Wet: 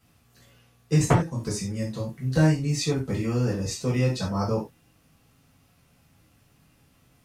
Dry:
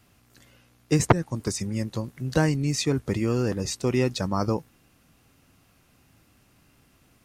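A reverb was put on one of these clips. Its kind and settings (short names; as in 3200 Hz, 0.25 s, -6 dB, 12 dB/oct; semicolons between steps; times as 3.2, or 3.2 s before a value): non-linear reverb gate 0.12 s falling, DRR -6 dB; gain -8.5 dB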